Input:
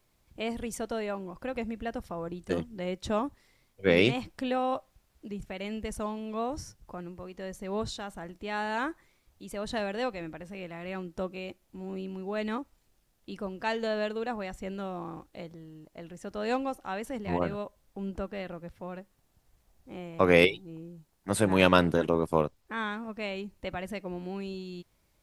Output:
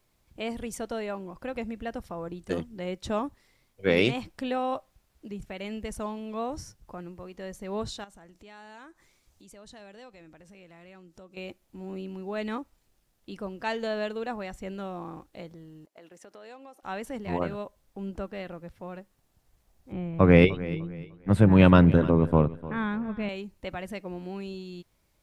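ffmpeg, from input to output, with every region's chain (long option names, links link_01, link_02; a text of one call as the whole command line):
ffmpeg -i in.wav -filter_complex "[0:a]asettb=1/sr,asplit=3[link_01][link_02][link_03];[link_01]atrim=end=8.044[link_04];[link_02]atrim=start=8.04:end=11.37,asetpts=PTS-STARTPTS,afade=type=in:duration=0.004:curve=qsin,afade=type=out:start_time=3.326:duration=0.004:curve=qsin,equalizer=frequency=6600:width=0.96:gain=7,acompressor=threshold=-54dB:ratio=2.5:attack=3.2:release=140:knee=1:detection=peak[link_05];[link_03]atrim=start=11.366[link_06];[link_04][link_05]acrossfade=duration=0.004:curve1=hsin:curve2=qsin[link_07];[link_07][link_06]acrossfade=duration=0.004:curve1=qsin:curve2=hsin,asettb=1/sr,asplit=3[link_08][link_09][link_10];[link_08]atrim=end=15.864[link_11];[link_09]atrim=start=15.86:end=16.83,asetpts=PTS-STARTPTS,afade=type=in:duration=0.004:curve=qsin,afade=type=out:start_time=0.966:duration=0.004:curve=qsin,highpass=340,agate=range=-9dB:threshold=-54dB:ratio=16:release=100:detection=peak,acompressor=threshold=-46dB:ratio=4:attack=3.2:release=140:knee=1:detection=peak[link_12];[link_10]atrim=start=16.826[link_13];[link_11][link_12]acrossfade=duration=0.004:curve1=hsin:curve2=qsin[link_14];[link_14][link_13]acrossfade=duration=0.004:curve1=qsin:curve2=hsin,asettb=1/sr,asplit=3[link_15][link_16][link_17];[link_15]atrim=end=19.924[link_18];[link_16]atrim=start=19.92:end=23.29,asetpts=PTS-STARTPTS,afade=type=in:duration=0.004:curve=qsin,afade=type=out:start_time=3.366:duration=0.004:curve=qsin,bass=frequency=250:gain=14,treble=frequency=4000:gain=-15,aecho=1:1:300|600|900:0.141|0.041|0.0119,atrim=end_sample=148617[link_19];[link_17]atrim=start=23.286[link_20];[link_18][link_19]acrossfade=duration=0.004:curve1=hsin:curve2=qsin[link_21];[link_21][link_20]acrossfade=duration=0.004:curve1=qsin:curve2=hsin" out.wav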